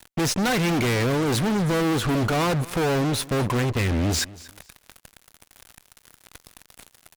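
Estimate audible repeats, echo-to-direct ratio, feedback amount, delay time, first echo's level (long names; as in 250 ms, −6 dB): 2, −20.0 dB, 24%, 235 ms, −20.0 dB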